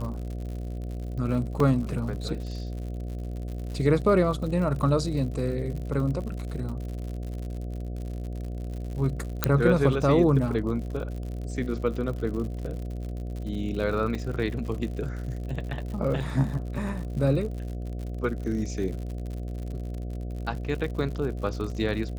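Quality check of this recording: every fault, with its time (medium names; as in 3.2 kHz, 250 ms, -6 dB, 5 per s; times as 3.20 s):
buzz 60 Hz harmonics 12 -33 dBFS
crackle 83 per s -35 dBFS
1.60 s: dropout 2.8 ms
9.44 s: pop -4 dBFS
14.15 s: dropout 3.5 ms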